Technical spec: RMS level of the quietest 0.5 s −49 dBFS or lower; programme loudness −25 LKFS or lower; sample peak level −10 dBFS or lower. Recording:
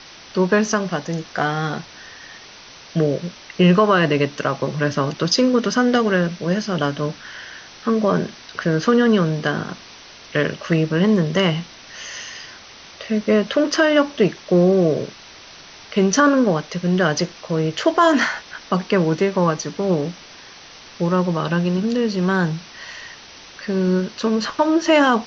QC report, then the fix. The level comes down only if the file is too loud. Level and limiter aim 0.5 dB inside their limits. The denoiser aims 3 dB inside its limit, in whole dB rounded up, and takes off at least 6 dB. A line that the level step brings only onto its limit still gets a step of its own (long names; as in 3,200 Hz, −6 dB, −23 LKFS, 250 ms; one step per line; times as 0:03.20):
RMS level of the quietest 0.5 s −42 dBFS: out of spec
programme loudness −19.5 LKFS: out of spec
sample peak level −4.5 dBFS: out of spec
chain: broadband denoise 6 dB, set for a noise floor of −42 dBFS
level −6 dB